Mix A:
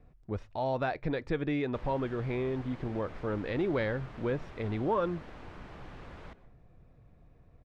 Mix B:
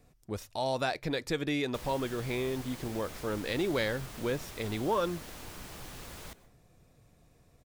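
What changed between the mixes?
speech: add low shelf 91 Hz -8.5 dB; master: remove LPF 2000 Hz 12 dB/oct

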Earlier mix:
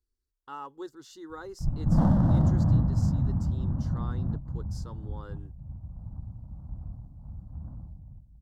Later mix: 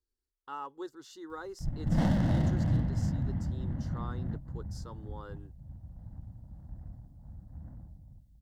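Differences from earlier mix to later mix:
background: add resonant high shelf 1600 Hz +10.5 dB, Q 3; master: add tone controls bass -6 dB, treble -2 dB

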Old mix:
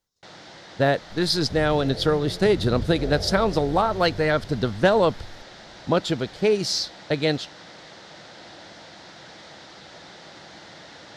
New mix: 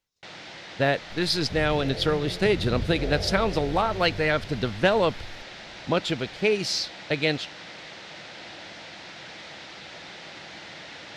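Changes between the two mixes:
speech -3.5 dB; master: add bell 2500 Hz +9.5 dB 0.74 oct

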